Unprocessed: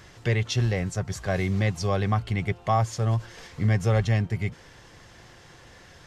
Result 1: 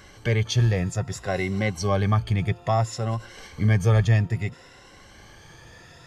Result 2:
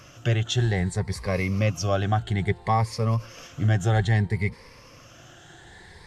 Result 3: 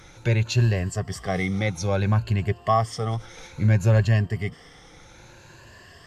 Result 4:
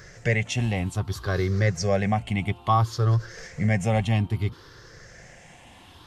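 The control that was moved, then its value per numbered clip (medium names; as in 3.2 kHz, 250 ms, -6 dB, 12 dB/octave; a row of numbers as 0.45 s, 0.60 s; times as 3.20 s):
drifting ripple filter, ripples per octave: 2.1, 0.9, 1.4, 0.56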